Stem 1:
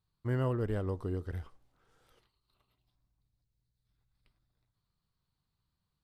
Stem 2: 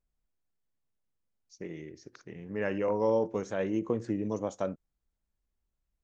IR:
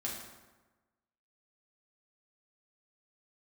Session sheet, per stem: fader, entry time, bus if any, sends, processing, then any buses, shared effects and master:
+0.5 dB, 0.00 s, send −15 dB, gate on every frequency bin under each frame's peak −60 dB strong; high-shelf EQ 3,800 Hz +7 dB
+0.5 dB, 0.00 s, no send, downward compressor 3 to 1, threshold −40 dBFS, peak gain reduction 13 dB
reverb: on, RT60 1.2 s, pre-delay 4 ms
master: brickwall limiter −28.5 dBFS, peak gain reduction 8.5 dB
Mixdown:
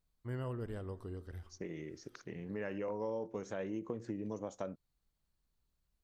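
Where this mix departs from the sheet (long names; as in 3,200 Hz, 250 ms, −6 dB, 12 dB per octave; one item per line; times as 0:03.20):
stem 1 +0.5 dB → −10.0 dB
master: missing brickwall limiter −28.5 dBFS, peak gain reduction 8.5 dB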